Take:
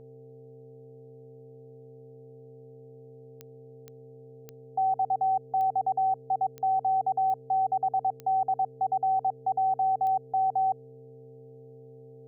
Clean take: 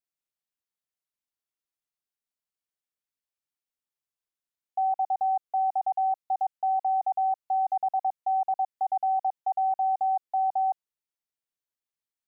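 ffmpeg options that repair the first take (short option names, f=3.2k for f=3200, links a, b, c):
-af "adeclick=t=4,bandreject=f=129.5:t=h:w=4,bandreject=f=259:t=h:w=4,bandreject=f=388.5:t=h:w=4,bandreject=f=518:t=h:w=4,bandreject=f=647.5:t=h:w=4,bandreject=f=777:t=h:w=4,bandreject=f=450:w=30"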